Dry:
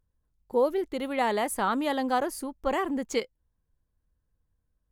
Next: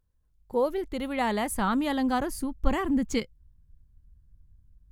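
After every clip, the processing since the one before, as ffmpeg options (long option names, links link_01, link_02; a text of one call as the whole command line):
ffmpeg -i in.wav -af "asubboost=boost=11.5:cutoff=170" out.wav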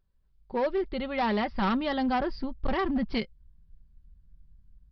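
ffmpeg -i in.wav -af "aecho=1:1:5.2:0.48,aresample=11025,asoftclip=type=hard:threshold=-22.5dB,aresample=44100" out.wav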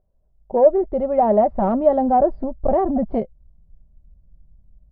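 ffmpeg -i in.wav -af "lowpass=frequency=650:width_type=q:width=6.3,volume=5dB" out.wav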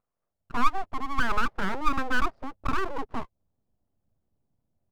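ffmpeg -i in.wav -af "highpass=frequency=520:poles=1,aeval=exprs='abs(val(0))':channel_layout=same,volume=-3dB" out.wav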